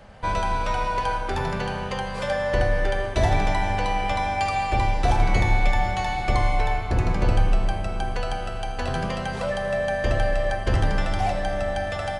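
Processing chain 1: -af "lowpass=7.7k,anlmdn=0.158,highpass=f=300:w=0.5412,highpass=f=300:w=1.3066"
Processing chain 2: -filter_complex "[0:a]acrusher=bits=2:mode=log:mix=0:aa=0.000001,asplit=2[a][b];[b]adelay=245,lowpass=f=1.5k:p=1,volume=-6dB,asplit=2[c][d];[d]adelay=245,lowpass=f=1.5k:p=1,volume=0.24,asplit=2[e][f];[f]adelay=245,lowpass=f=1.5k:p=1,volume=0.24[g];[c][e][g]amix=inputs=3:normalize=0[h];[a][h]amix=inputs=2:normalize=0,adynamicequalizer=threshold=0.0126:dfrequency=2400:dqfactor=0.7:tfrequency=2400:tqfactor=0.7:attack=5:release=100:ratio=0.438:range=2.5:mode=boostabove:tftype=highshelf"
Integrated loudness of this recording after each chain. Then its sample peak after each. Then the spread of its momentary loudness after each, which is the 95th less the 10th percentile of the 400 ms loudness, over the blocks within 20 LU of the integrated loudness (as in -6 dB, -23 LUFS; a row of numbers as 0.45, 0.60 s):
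-27.0, -22.5 LUFS; -13.5, -5.0 dBFS; 6, 7 LU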